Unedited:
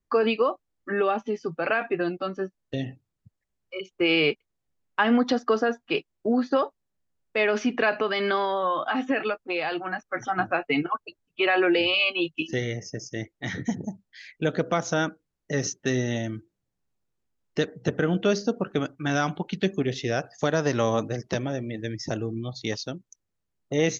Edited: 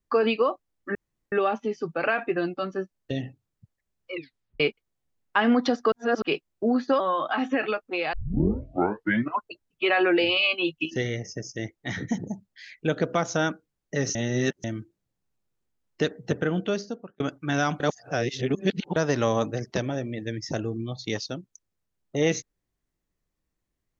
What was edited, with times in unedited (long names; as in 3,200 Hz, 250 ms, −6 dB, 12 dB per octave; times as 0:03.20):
0:00.95: splice in room tone 0.37 s
0:03.76: tape stop 0.47 s
0:05.55–0:05.85: reverse
0:06.63–0:08.57: remove
0:09.70: tape start 1.33 s
0:15.72–0:16.21: reverse
0:17.59–0:18.77: fade out equal-power
0:19.37–0:20.53: reverse